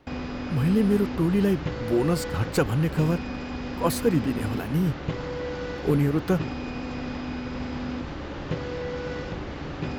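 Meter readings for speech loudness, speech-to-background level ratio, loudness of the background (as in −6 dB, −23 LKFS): −25.5 LKFS, 7.5 dB, −33.0 LKFS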